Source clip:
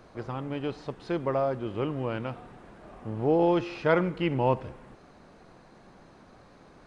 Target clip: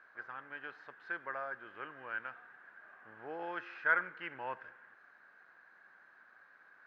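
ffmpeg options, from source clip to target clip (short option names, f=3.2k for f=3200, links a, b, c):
-af "bandpass=f=1.6k:t=q:w=9.3:csg=0,volume=8.5dB"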